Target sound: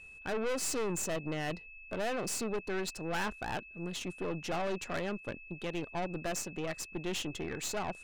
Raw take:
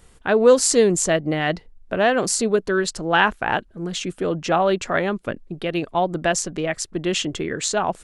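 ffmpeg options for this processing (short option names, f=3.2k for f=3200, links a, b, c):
-af "aeval=exprs='(tanh(14.1*val(0)+0.65)-tanh(0.65))/14.1':c=same,aeval=exprs='val(0)+0.00891*sin(2*PI*2600*n/s)':c=same,volume=-8.5dB"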